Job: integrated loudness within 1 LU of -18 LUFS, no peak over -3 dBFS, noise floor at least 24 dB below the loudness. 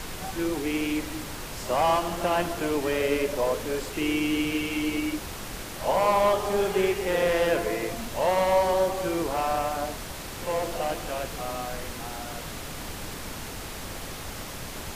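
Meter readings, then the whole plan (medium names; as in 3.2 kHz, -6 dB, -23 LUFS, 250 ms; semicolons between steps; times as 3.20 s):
noise floor -38 dBFS; noise floor target -52 dBFS; loudness -27.5 LUFS; peak level -10.5 dBFS; loudness target -18.0 LUFS
-> noise print and reduce 14 dB; trim +9.5 dB; peak limiter -3 dBFS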